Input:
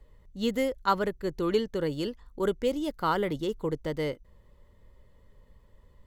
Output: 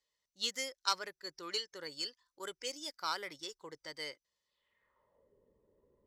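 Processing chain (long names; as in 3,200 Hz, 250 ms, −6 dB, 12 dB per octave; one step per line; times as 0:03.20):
stylus tracing distortion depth 0.037 ms
noise reduction from a noise print of the clip's start 11 dB
band-pass filter sweep 5,500 Hz → 390 Hz, 0:04.44–0:05.34
level +11.5 dB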